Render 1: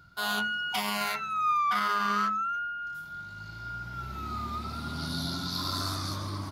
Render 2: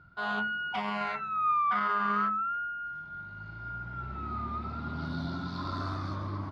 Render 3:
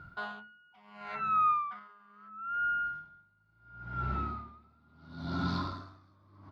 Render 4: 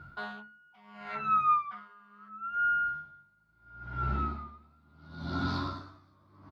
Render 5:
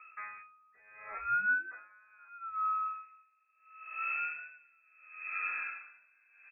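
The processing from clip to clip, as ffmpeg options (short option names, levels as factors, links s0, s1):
-af "lowpass=1900"
-filter_complex "[0:a]asplit=2[s0][s1];[s1]alimiter=level_in=2.24:limit=0.0631:level=0:latency=1:release=26,volume=0.447,volume=1.06[s2];[s0][s2]amix=inputs=2:normalize=0,aeval=exprs='val(0)*pow(10,-34*(0.5-0.5*cos(2*PI*0.73*n/s))/20)':c=same"
-filter_complex "[0:a]asplit=2[s0][s1];[s1]adelay=14,volume=0.631[s2];[s0][s2]amix=inputs=2:normalize=0"
-af "lowpass=f=2300:t=q:w=0.5098,lowpass=f=2300:t=q:w=0.6013,lowpass=f=2300:t=q:w=0.9,lowpass=f=2300:t=q:w=2.563,afreqshift=-2700,bandreject=f=46.48:t=h:w=4,bandreject=f=92.96:t=h:w=4,bandreject=f=139.44:t=h:w=4,bandreject=f=185.92:t=h:w=4,bandreject=f=232.4:t=h:w=4,bandreject=f=278.88:t=h:w=4,bandreject=f=325.36:t=h:w=4,bandreject=f=371.84:t=h:w=4,bandreject=f=418.32:t=h:w=4,bandreject=f=464.8:t=h:w=4,bandreject=f=511.28:t=h:w=4,bandreject=f=557.76:t=h:w=4,bandreject=f=604.24:t=h:w=4,volume=0.596"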